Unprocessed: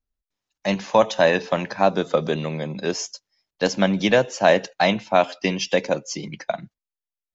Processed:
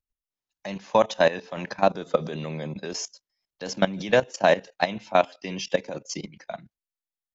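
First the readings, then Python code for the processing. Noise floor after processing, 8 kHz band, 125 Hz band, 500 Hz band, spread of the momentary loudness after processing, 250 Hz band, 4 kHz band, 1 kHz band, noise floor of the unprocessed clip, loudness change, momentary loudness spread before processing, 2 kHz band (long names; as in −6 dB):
below −85 dBFS, can't be measured, −6.0 dB, −4.0 dB, 15 LU, −7.0 dB, −5.5 dB, −3.5 dB, below −85 dBFS, −4.0 dB, 11 LU, −4.5 dB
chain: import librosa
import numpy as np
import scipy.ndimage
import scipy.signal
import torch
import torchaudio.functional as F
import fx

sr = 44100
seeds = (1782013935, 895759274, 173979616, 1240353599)

y = fx.level_steps(x, sr, step_db=16)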